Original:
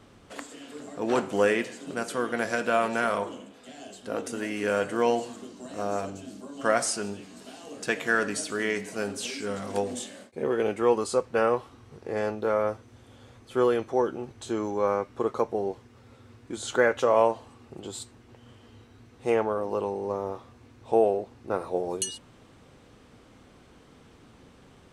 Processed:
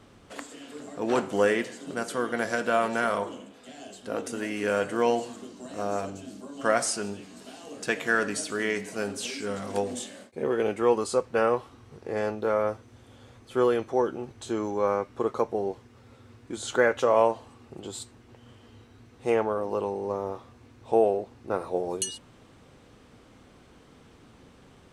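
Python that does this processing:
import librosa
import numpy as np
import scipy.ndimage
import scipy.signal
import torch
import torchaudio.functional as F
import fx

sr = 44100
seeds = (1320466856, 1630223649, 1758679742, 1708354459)

y = fx.notch(x, sr, hz=2500.0, q=12.0, at=(1.28, 3.28))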